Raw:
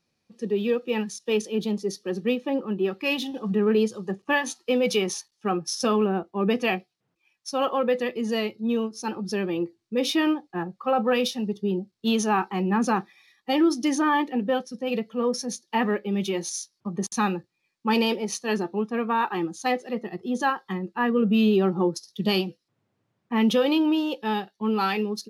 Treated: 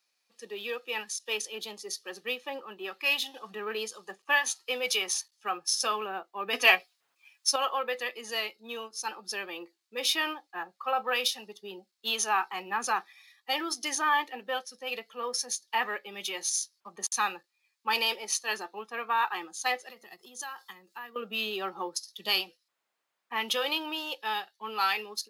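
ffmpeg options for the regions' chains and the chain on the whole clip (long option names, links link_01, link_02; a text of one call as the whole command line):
ffmpeg -i in.wav -filter_complex "[0:a]asettb=1/sr,asplit=3[link_01][link_02][link_03];[link_01]atrim=end=6.534[link_04];[link_02]atrim=start=6.53:end=7.56,asetpts=PTS-STARTPTS,afade=type=in:duration=0.004:curve=qsin,afade=type=out:start_time=1.026:duration=0.004:curve=qsin,aecho=1:1:7.2:0.49,atrim=end_sample=45423,acontrast=75[link_05];[link_03]atrim=start=7.556[link_06];[link_04][link_05]acrossfade=duration=0.004:curve1=hsin:curve2=qsin[link_07];[link_07][link_06]acrossfade=duration=0.004:curve1=qsin:curve2=hsin,asettb=1/sr,asplit=3[link_08][link_09][link_10];[link_08]atrim=end=19.904[link_11];[link_09]atrim=start=19.9:end=21.16,asetpts=PTS-STARTPTS,afade=type=in:duration=0.004:curve=qsin,afade=type=out:start_time=1.256:duration=0.004:curve=qsin,bass=frequency=250:gain=8,treble=frequency=4000:gain=12,acompressor=threshold=-35dB:ratio=5:attack=3.2:release=140:knee=1:detection=peak[link_12];[link_10]atrim=start=21.156[link_13];[link_11][link_12]acrossfade=duration=0.004:curve1=hsin:curve2=qsin[link_14];[link_14][link_13]acrossfade=duration=0.004:curve1=qsin:curve2=hsin,highpass=940,highshelf=frequency=5900:gain=6,bandreject=frequency=5700:width=21" out.wav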